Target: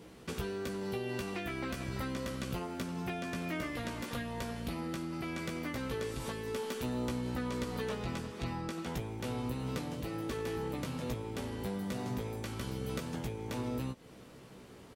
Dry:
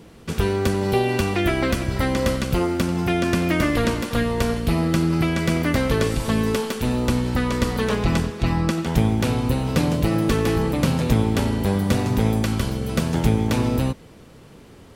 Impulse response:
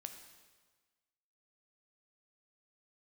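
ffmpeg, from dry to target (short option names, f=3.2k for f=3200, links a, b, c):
-filter_complex "[0:a]lowshelf=f=90:g=-9.5,acompressor=threshold=-29dB:ratio=6,asplit=2[a][b];[b]adelay=16,volume=-4.5dB[c];[a][c]amix=inputs=2:normalize=0,volume=-7dB"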